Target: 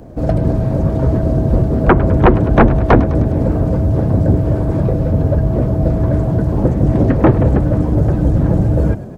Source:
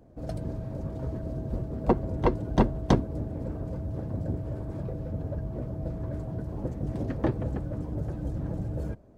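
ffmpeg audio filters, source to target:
-filter_complex "[0:a]aeval=exprs='0.447*sin(PI/2*3.55*val(0)/0.447)':c=same,asplit=7[a][b][c][d][e][f][g];[b]adelay=103,afreqshift=33,volume=-17dB[h];[c]adelay=206,afreqshift=66,volume=-21.6dB[i];[d]adelay=309,afreqshift=99,volume=-26.2dB[j];[e]adelay=412,afreqshift=132,volume=-30.7dB[k];[f]adelay=515,afreqshift=165,volume=-35.3dB[l];[g]adelay=618,afreqshift=198,volume=-39.9dB[m];[a][h][i][j][k][l][m]amix=inputs=7:normalize=0,acrossover=split=2600[n][o];[o]acompressor=threshold=-54dB:ratio=4:attack=1:release=60[p];[n][p]amix=inputs=2:normalize=0,volume=4.5dB"

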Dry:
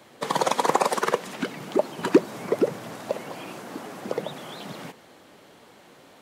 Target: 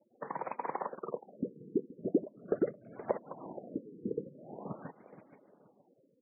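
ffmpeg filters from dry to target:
-filter_complex "[0:a]acompressor=threshold=-43dB:ratio=3,asplit=3[a][b][c];[a]afade=t=out:st=0.91:d=0.02[d];[b]asuperstop=centerf=920:order=4:qfactor=1.7,afade=t=in:st=0.91:d=0.02,afade=t=out:st=2.94:d=0.02[e];[c]afade=t=in:st=2.94:d=0.02[f];[d][e][f]amix=inputs=3:normalize=0,agate=range=-13dB:threshold=-42dB:ratio=16:detection=peak,afftfilt=real='re*gte(hypot(re,im),0.002)':imag='im*gte(hypot(re,im),0.002)':win_size=1024:overlap=0.75,adynamicequalizer=threshold=0.00158:dfrequency=940:dqfactor=3.7:tfrequency=940:tqfactor=3.7:attack=5:release=100:ratio=0.375:range=1.5:mode=boostabove:tftype=bell,dynaudnorm=f=220:g=11:m=9.5dB,aecho=1:1:474|948|1422:0.158|0.0539|0.0183,afftfilt=real='re*lt(b*sr/1024,480*pow(2600/480,0.5+0.5*sin(2*PI*0.43*pts/sr)))':imag='im*lt(b*sr/1024,480*pow(2600/480,0.5+0.5*sin(2*PI*0.43*pts/sr)))':win_size=1024:overlap=0.75"

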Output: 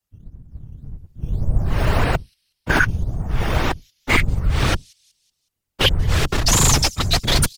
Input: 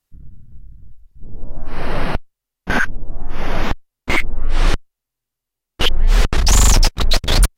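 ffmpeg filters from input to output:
-filter_complex "[0:a]acrossover=split=160|740|4200[a][b][c][d];[a]asoftclip=type=tanh:threshold=-16dB[e];[b]acrusher=samples=10:mix=1:aa=0.000001:lfo=1:lforange=10:lforate=1.8[f];[d]aecho=1:1:185|370|555|740:0.141|0.0607|0.0261|0.0112[g];[e][f][c][g]amix=inputs=4:normalize=0,afftfilt=real='hypot(re,im)*cos(2*PI*random(0))':imag='hypot(re,im)*sin(2*PI*random(1))':win_size=512:overlap=0.75,dynaudnorm=f=150:g=9:m=9.5dB"

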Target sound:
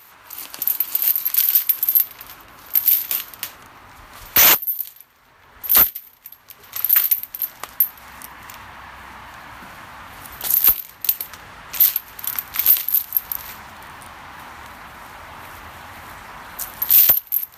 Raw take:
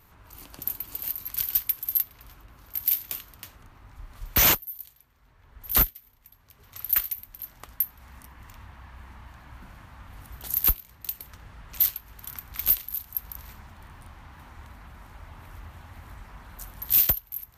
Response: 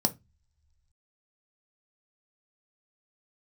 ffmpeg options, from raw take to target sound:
-af "asetnsamples=n=441:p=0,asendcmd='1.72 highpass f 540',highpass=f=1.2k:p=1,alimiter=level_in=15.5dB:limit=-1dB:release=50:level=0:latency=1,volume=-1dB"

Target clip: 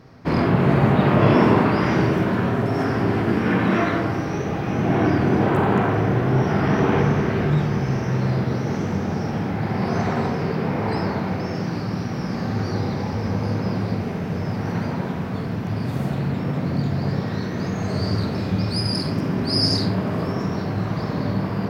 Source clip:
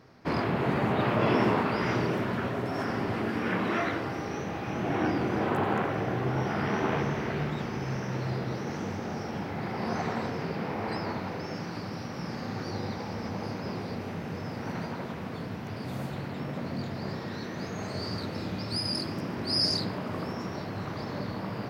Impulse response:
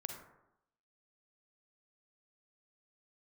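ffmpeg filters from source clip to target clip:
-filter_complex "[0:a]lowshelf=f=270:g=7.5[a];[1:a]atrim=start_sample=2205,asetrate=48510,aresample=44100[b];[a][b]afir=irnorm=-1:irlink=0,volume=8.5dB"

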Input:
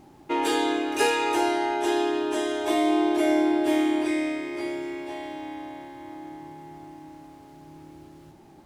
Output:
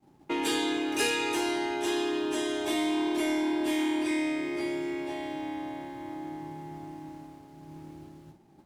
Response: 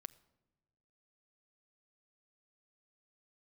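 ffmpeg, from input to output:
-filter_complex "[0:a]agate=range=-33dB:threshold=-43dB:ratio=3:detection=peak,equalizer=f=170:t=o:w=1.4:g=5.5,acrossover=split=370|1700[a][b][c];[a]asoftclip=type=tanh:threshold=-28.5dB[d];[b]acompressor=threshold=-36dB:ratio=6[e];[d][e][c]amix=inputs=3:normalize=0"

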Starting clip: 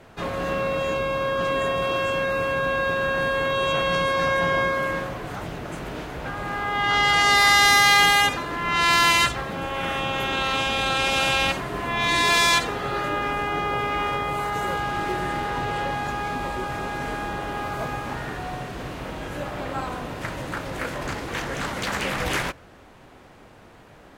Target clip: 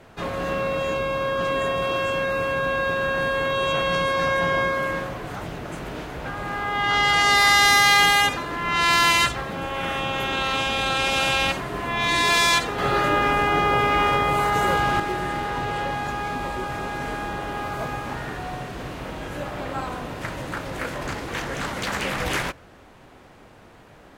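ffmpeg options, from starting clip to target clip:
-filter_complex "[0:a]asettb=1/sr,asplit=3[a][b][c];[a]atrim=end=12.784[d];[b]atrim=start=12.78:end=15,asetpts=PTS-STARTPTS,afade=t=in:d=0.004:c=qsin,afade=t=out:st=2.216:d=0.004:c=qsin,acontrast=38[e];[c]atrim=start=14.996[f];[d][e]acrossfade=d=0.004:c1=hsin:c2=qsin[g];[g][f]acrossfade=d=0.004:c1=qsin:c2=hsin"

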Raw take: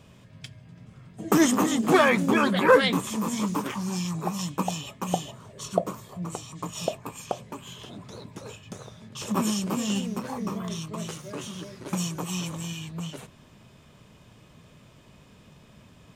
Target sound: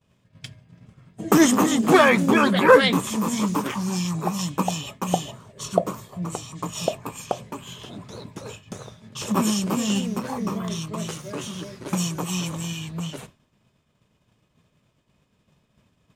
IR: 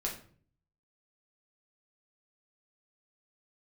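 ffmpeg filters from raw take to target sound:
-af "agate=range=-33dB:threshold=-41dB:ratio=3:detection=peak,volume=4dB"

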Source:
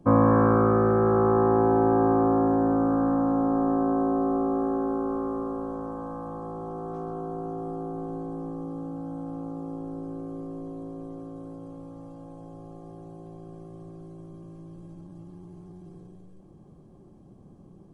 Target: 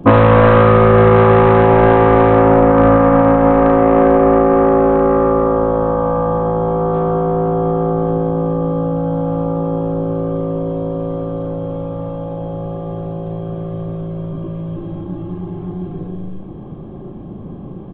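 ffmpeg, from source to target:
-filter_complex "[0:a]aresample=8000,asoftclip=type=tanh:threshold=-20dB,aresample=44100,asplit=2[a][b];[b]adelay=38,volume=-3dB[c];[a][c]amix=inputs=2:normalize=0,alimiter=level_in=20dB:limit=-1dB:release=50:level=0:latency=1,volume=-1dB"

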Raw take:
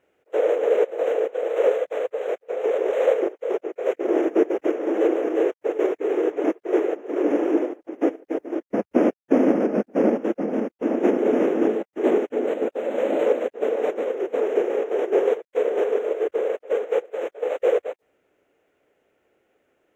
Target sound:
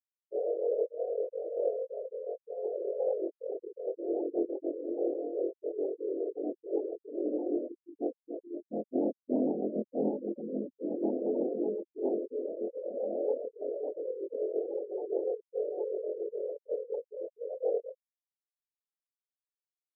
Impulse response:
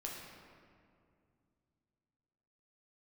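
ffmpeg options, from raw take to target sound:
-af "afftfilt=real='re':imag='-im':win_size=2048:overlap=0.75,afftfilt=real='re*gte(hypot(re,im),0.0794)':imag='im*gte(hypot(re,im),0.0794)':win_size=1024:overlap=0.75,volume=-7dB"

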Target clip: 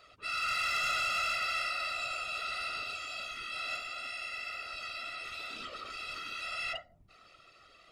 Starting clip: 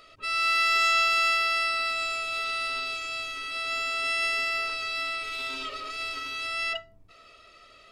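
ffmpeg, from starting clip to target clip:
-filter_complex "[0:a]asettb=1/sr,asplit=3[a][b][c];[a]atrim=end=3.764[d];[b]atrim=start=3.76:end=6.09,asetpts=PTS-STARTPTS,afade=t=in:d=0.004:c=qsin,afade=t=out:st=2.326:d=0.004:c=qsin,acompressor=threshold=-32dB:ratio=6[e];[c]atrim=start=6.086[f];[d][e]acrossfade=d=0.004:c1=hsin:c2=qsin[g];[g][f]acrossfade=d=0.004:c1=qsin:c2=hsin,afftfilt=real='hypot(re,im)*cos(2*PI*random(0))':imag='hypot(re,im)*sin(2*PI*random(1))':win_size=512:overlap=0.75,asoftclip=type=tanh:threshold=-26.5dB"

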